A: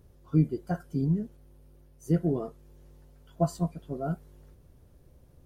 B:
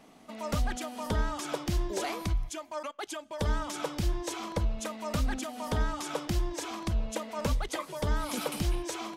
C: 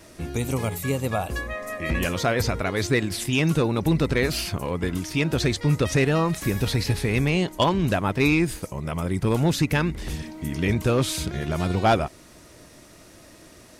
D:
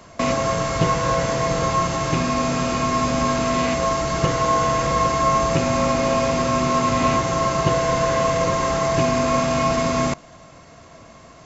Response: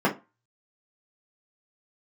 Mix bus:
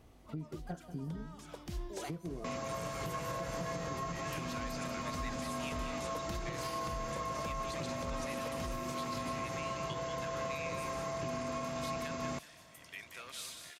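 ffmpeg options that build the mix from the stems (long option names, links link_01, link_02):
-filter_complex "[0:a]acompressor=threshold=-34dB:ratio=6,volume=-4.5dB,asplit=3[link_01][link_02][link_03];[link_02]volume=-11dB[link_04];[1:a]volume=-9dB[link_05];[2:a]highpass=1500,adelay=2300,volume=-15dB,asplit=2[link_06][link_07];[link_07]volume=-7dB[link_08];[3:a]highpass=45,adelay=2250,volume=-15.5dB[link_09];[link_03]apad=whole_len=404199[link_10];[link_05][link_10]sidechaincompress=threshold=-50dB:ratio=8:attack=37:release=865[link_11];[link_04][link_08]amix=inputs=2:normalize=0,aecho=0:1:187|374|561|748:1|0.29|0.0841|0.0244[link_12];[link_01][link_11][link_06][link_09][link_12]amix=inputs=5:normalize=0,alimiter=level_in=5dB:limit=-24dB:level=0:latency=1:release=159,volume=-5dB"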